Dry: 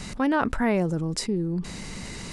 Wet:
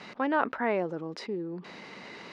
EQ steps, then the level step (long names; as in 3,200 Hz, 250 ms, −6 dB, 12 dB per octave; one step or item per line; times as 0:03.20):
high-pass filter 400 Hz 12 dB per octave
high-frequency loss of the air 280 metres
0.0 dB